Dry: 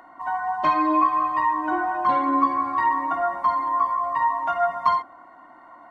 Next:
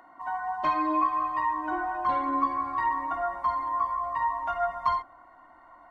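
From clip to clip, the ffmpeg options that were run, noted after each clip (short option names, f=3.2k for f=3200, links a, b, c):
-af "asubboost=boost=7.5:cutoff=76,volume=-5.5dB"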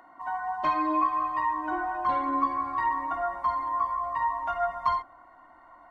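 -af anull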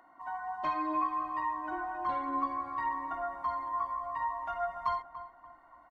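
-filter_complex "[0:a]asplit=2[a][b];[b]adelay=289,lowpass=f=1.3k:p=1,volume=-11.5dB,asplit=2[c][d];[d]adelay=289,lowpass=f=1.3k:p=1,volume=0.43,asplit=2[e][f];[f]adelay=289,lowpass=f=1.3k:p=1,volume=0.43,asplit=2[g][h];[h]adelay=289,lowpass=f=1.3k:p=1,volume=0.43[i];[a][c][e][g][i]amix=inputs=5:normalize=0,volume=-6.5dB"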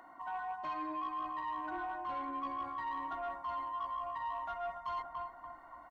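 -af "areverse,acompressor=threshold=-40dB:ratio=6,areverse,asoftclip=type=tanh:threshold=-35.5dB,volume=4.5dB"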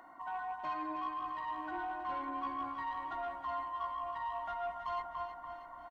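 -af "aecho=1:1:319|638|957|1276|1595|1914:0.376|0.199|0.106|0.056|0.0297|0.0157"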